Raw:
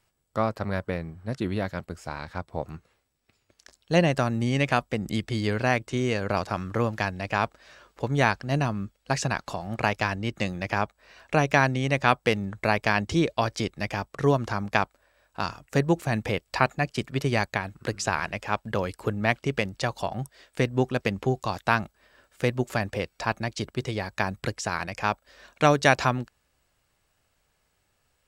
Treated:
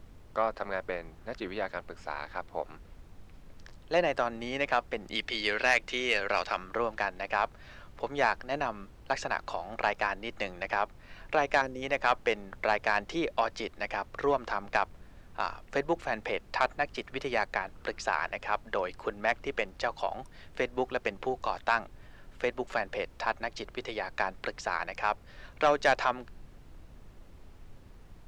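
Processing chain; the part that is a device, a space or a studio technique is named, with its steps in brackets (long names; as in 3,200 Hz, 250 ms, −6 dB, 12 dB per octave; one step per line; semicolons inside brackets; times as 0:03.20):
0:05.15–0:06.57: meter weighting curve D
0:11.61–0:11.83: gain on a spectral selection 570–5,000 Hz −15 dB
dynamic equaliser 3,600 Hz, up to −4 dB, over −38 dBFS, Q 0.8
aircraft cabin announcement (band-pass filter 490–4,000 Hz; soft clipping −14 dBFS, distortion −14 dB; brown noise bed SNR 16 dB)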